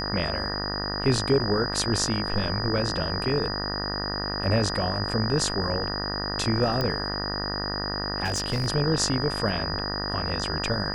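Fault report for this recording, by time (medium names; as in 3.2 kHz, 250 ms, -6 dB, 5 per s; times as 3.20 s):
buzz 50 Hz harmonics 38 -32 dBFS
whine 4.9 kHz -31 dBFS
6.81 s: pop -14 dBFS
8.24–8.68 s: clipped -21.5 dBFS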